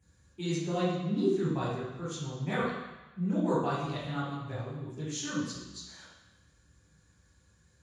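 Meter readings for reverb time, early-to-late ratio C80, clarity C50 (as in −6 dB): 1.0 s, 2.5 dB, −1.0 dB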